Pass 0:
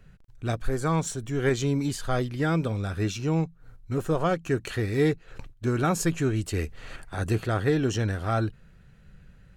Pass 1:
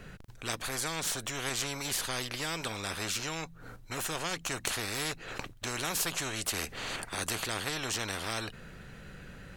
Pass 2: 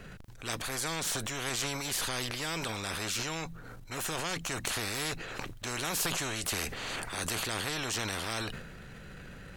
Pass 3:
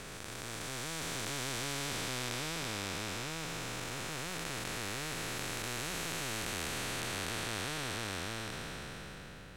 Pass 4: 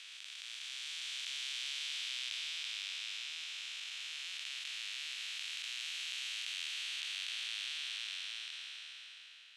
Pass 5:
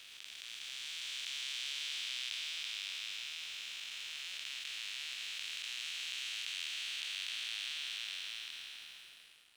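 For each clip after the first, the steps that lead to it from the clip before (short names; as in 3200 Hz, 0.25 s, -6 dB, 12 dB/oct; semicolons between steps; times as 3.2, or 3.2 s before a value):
spectral compressor 4:1; gain -2.5 dB
transient shaper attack -2 dB, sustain +8 dB
time blur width 1.47 s
ladder band-pass 3500 Hz, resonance 50%; gain +9.5 dB
crossover distortion -58 dBFS; gain +1 dB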